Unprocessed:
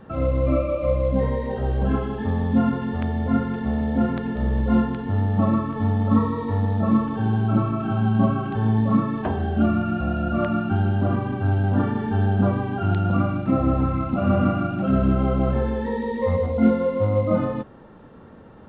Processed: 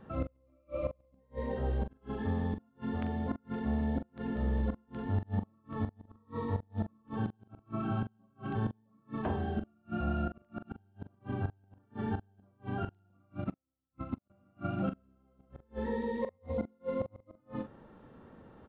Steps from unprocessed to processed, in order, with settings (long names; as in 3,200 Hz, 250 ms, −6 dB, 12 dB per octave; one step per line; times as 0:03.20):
gate with flip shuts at −13 dBFS, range −39 dB
double-tracking delay 42 ms −9.5 dB
0:13.44–0:14.30: expander for the loud parts 2.5 to 1, over −37 dBFS
level −9 dB